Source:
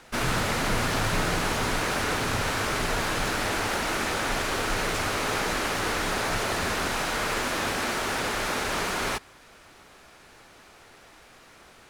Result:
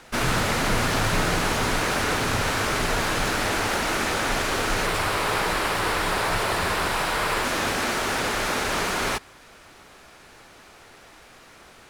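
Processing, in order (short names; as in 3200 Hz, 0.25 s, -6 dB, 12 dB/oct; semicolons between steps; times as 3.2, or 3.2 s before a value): 4.86–7.45 thirty-one-band EQ 250 Hz -7 dB, 1000 Hz +4 dB, 6300 Hz -6 dB; gain +3 dB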